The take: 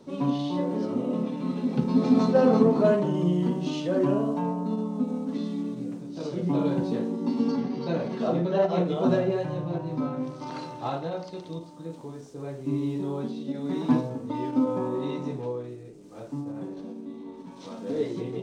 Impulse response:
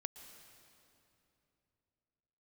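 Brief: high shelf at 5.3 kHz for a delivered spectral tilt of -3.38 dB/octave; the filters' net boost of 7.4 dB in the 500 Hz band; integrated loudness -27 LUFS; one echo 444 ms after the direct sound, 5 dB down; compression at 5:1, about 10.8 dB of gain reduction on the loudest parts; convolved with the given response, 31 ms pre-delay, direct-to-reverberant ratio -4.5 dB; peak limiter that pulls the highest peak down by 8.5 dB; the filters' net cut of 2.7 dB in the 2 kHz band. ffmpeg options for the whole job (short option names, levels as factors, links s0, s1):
-filter_complex "[0:a]equalizer=f=500:t=o:g=9,equalizer=f=2000:t=o:g=-5.5,highshelf=f=5300:g=6.5,acompressor=threshold=0.1:ratio=5,alimiter=limit=0.1:level=0:latency=1,aecho=1:1:444:0.562,asplit=2[s0][s1];[1:a]atrim=start_sample=2205,adelay=31[s2];[s1][s2]afir=irnorm=-1:irlink=0,volume=2.37[s3];[s0][s3]amix=inputs=2:normalize=0,volume=0.596"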